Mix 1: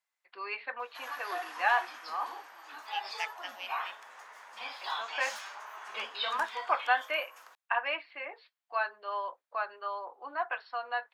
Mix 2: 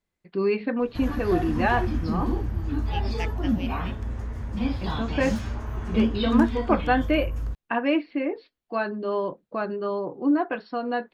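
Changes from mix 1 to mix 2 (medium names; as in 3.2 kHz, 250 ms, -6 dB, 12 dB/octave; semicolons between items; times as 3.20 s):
first voice: remove distance through air 120 m; master: remove high-pass 810 Hz 24 dB/octave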